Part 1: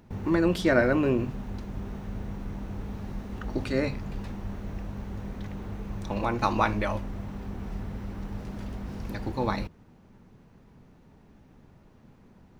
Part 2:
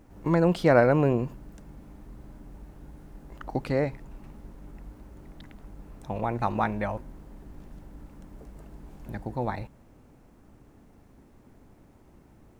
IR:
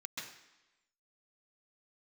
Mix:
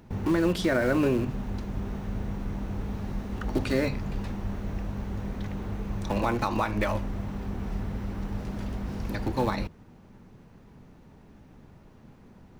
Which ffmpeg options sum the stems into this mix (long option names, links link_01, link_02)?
-filter_complex "[0:a]volume=3dB[link_01];[1:a]aeval=exprs='(mod(16.8*val(0)+1,2)-1)/16.8':channel_layout=same,volume=-13dB[link_02];[link_01][link_02]amix=inputs=2:normalize=0,alimiter=limit=-15dB:level=0:latency=1:release=176"